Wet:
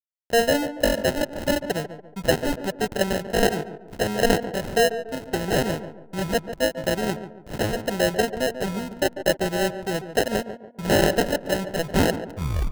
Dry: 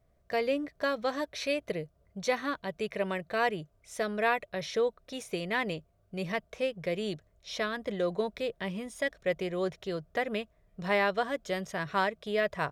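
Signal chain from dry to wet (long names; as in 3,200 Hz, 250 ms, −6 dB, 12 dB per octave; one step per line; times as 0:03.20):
turntable brake at the end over 0.75 s
decimation without filtering 38×
slack as between gear wheels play −41 dBFS
on a send: tape delay 143 ms, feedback 45%, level −9 dB, low-pass 1,200 Hz
on the sum: level +9 dB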